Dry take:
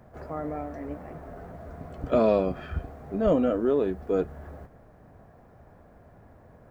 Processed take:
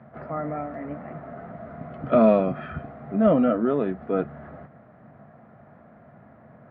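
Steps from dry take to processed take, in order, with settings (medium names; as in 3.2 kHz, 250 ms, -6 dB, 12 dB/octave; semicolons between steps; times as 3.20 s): cabinet simulation 120–3400 Hz, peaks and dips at 140 Hz +9 dB, 220 Hz +9 dB, 430 Hz -3 dB, 660 Hz +6 dB, 1.3 kHz +8 dB, 2 kHz +6 dB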